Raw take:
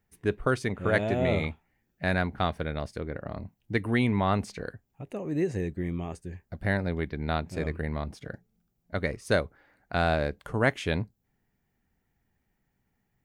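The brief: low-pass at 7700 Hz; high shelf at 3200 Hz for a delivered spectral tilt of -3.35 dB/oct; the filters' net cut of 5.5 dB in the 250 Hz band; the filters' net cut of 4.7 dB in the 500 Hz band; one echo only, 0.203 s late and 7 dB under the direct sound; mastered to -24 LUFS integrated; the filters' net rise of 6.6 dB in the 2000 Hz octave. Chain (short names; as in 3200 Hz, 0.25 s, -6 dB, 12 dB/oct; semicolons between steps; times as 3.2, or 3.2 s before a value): LPF 7700 Hz; bell 250 Hz -6.5 dB; bell 500 Hz -5 dB; bell 2000 Hz +7 dB; high shelf 3200 Hz +5.5 dB; echo 0.203 s -7 dB; gain +4 dB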